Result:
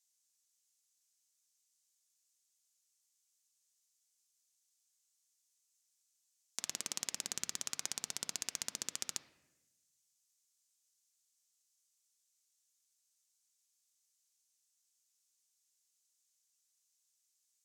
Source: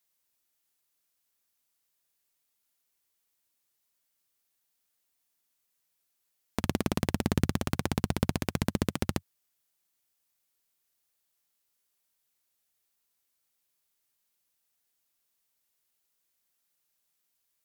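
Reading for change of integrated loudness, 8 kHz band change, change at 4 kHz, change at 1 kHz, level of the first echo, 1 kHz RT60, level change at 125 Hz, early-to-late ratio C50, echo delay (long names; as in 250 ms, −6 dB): −8.5 dB, +5.0 dB, −1.5 dB, −17.0 dB, no echo audible, 0.85 s, −34.0 dB, 13.0 dB, no echo audible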